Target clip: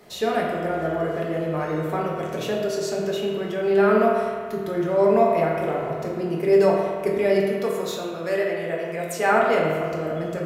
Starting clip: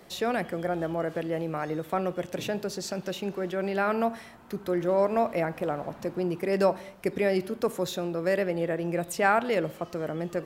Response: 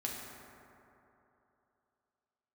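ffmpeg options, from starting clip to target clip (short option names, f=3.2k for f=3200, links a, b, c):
-filter_complex "[0:a]asettb=1/sr,asplit=3[a][b][c];[a]atrim=end=7.454[d];[b]atrim=start=7.45:end=9.29,asetpts=PTS-STARTPTS,afade=t=in:d=0.004:c=qsin,afade=t=out:st=1.836:d=0.004:c=qsin,lowshelf=f=310:g=-10[e];[c]atrim=start=9.286[f];[d][e]acrossfade=d=0.004:c1=hsin:c2=qsin[g];[g][f]acrossfade=d=0.004:c1=qsin:c2=hsin[h];[1:a]atrim=start_sample=2205,asetrate=74970,aresample=44100[i];[h][i]afir=irnorm=-1:irlink=0,volume=7dB"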